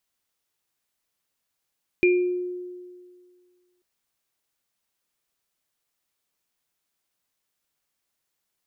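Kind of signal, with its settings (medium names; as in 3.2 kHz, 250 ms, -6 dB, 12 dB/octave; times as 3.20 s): sine partials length 1.79 s, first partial 359 Hz, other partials 2.4 kHz, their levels -4 dB, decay 1.93 s, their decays 0.45 s, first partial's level -14.5 dB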